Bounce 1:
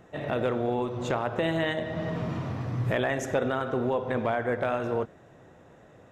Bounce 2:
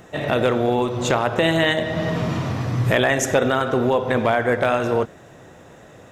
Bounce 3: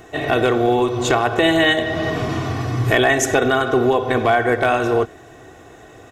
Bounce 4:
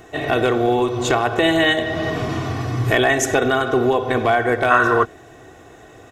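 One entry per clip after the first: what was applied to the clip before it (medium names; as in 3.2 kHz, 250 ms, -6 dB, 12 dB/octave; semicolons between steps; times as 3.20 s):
treble shelf 3 kHz +9.5 dB; trim +8 dB
comb 2.7 ms, depth 64%; trim +1.5 dB
time-frequency box 4.71–5.05 s, 930–2000 Hz +12 dB; trim -1 dB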